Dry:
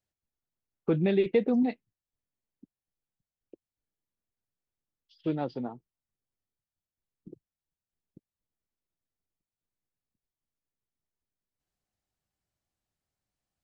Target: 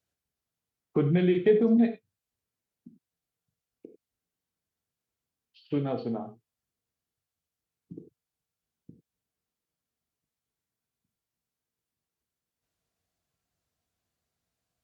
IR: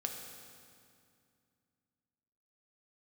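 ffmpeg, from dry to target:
-filter_complex "[0:a]highpass=59,asplit=2[a][b];[b]acompressor=threshold=-36dB:ratio=6,volume=-2.5dB[c];[a][c]amix=inputs=2:normalize=0[d];[1:a]atrim=start_sample=2205,afade=t=out:st=0.14:d=0.01,atrim=end_sample=6615[e];[d][e]afir=irnorm=-1:irlink=0,asetrate=40517,aresample=44100"

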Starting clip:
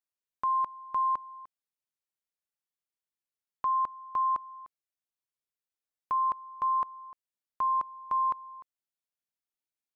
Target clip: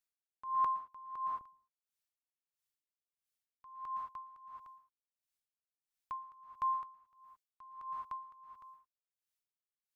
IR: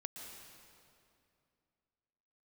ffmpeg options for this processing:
-filter_complex "[0:a]asetnsamples=n=441:p=0,asendcmd='1.41 equalizer g -13.5',equalizer=f=420:w=0.42:g=-6[a];[1:a]atrim=start_sample=2205,afade=t=out:st=0.28:d=0.01,atrim=end_sample=12789[b];[a][b]afir=irnorm=-1:irlink=0,aeval=exprs='val(0)*pow(10,-24*(0.5-0.5*cos(2*PI*1.5*n/s))/20)':c=same,volume=8dB"

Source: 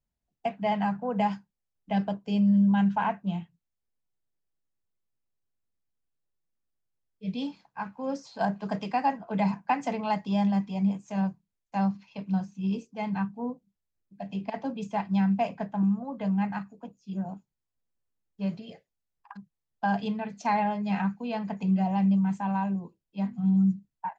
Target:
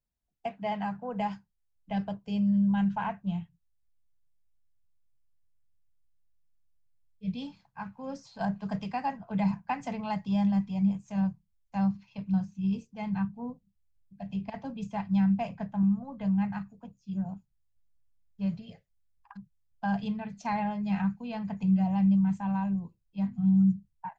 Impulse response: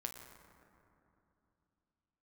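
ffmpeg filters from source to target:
-af "asubboost=boost=9:cutoff=110,volume=-4.5dB"

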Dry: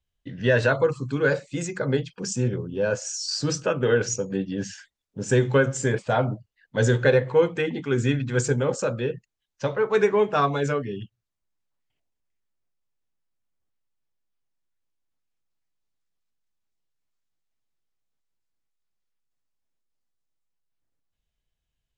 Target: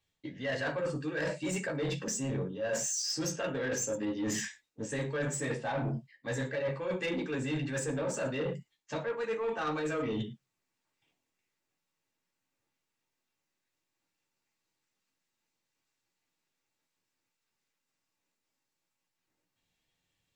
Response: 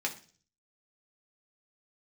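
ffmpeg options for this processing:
-filter_complex "[1:a]atrim=start_sample=2205,afade=t=out:st=0.18:d=0.01,atrim=end_sample=8379[a];[0:a][a]afir=irnorm=-1:irlink=0,asetrate=47628,aresample=44100,areverse,acompressor=threshold=-31dB:ratio=16,areverse,asoftclip=type=tanh:threshold=-30.5dB,volume=3.5dB"

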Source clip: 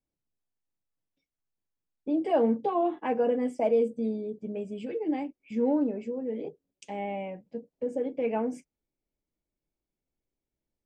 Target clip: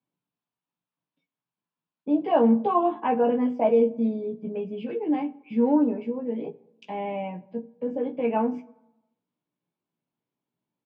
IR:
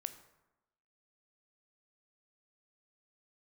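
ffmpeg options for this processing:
-filter_complex "[0:a]highpass=f=140:w=0.5412,highpass=f=140:w=1.3066,equalizer=f=150:t=q:w=4:g=5,equalizer=f=360:t=q:w=4:g=-4,equalizer=f=530:t=q:w=4:g=-4,equalizer=f=1k:t=q:w=4:g=7,equalizer=f=2k:t=q:w=4:g=-5,lowpass=f=3.6k:w=0.5412,lowpass=f=3.6k:w=1.3066,asplit=2[a][b];[b]adelay=17,volume=-5dB[c];[a][c]amix=inputs=2:normalize=0,asplit=2[d][e];[1:a]atrim=start_sample=2205,lowshelf=f=150:g=10.5[f];[e][f]afir=irnorm=-1:irlink=0,volume=-4dB[g];[d][g]amix=inputs=2:normalize=0"

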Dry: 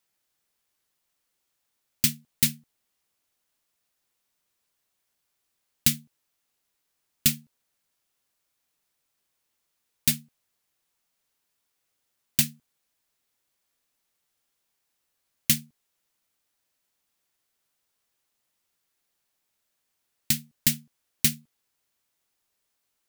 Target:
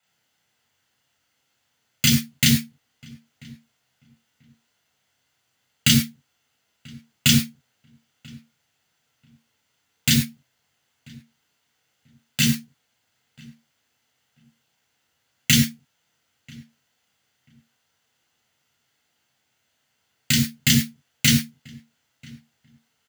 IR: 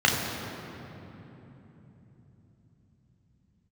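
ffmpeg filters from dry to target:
-filter_complex "[0:a]asettb=1/sr,asplit=3[a][b][c];[a]atrim=end=10.104[d];[b]atrim=start=10.1:end=12.4,asetpts=PTS-STARTPTS,afade=t=in:d=0.004:c=qsin,afade=t=out:st=2.296:d=0.004:c=qsin,acompressor=threshold=-27dB:ratio=6[e];[c]atrim=start=12.396[f];[d][e]acrossfade=d=0.004:c1=hsin:c2=qsin[g];[g][f]acrossfade=d=0.004:c1=qsin:c2=hsin,asplit=2[h][i];[i]adelay=988,lowpass=f=1.7k:p=1,volume=-23dB,asplit=2[j][k];[k]adelay=988,lowpass=f=1.7k:p=1,volume=0.2[l];[h][j][l]amix=inputs=3:normalize=0[m];[1:a]atrim=start_sample=2205,afade=t=out:st=0.19:d=0.01,atrim=end_sample=8820[n];[m][n]afir=irnorm=-1:irlink=0,volume=-5.5dB"

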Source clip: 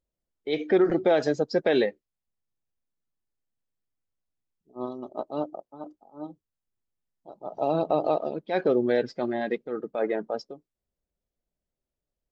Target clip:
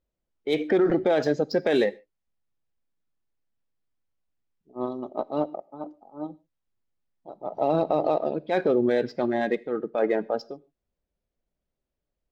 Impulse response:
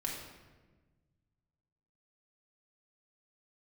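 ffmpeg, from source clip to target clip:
-filter_complex "[0:a]adynamicsmooth=sensitivity=5:basefreq=4.7k,alimiter=limit=-17dB:level=0:latency=1:release=21,asplit=2[a][b];[1:a]atrim=start_sample=2205,atrim=end_sample=6615,highshelf=f=2.9k:g=10[c];[b][c]afir=irnorm=-1:irlink=0,volume=-21.5dB[d];[a][d]amix=inputs=2:normalize=0,volume=3dB"

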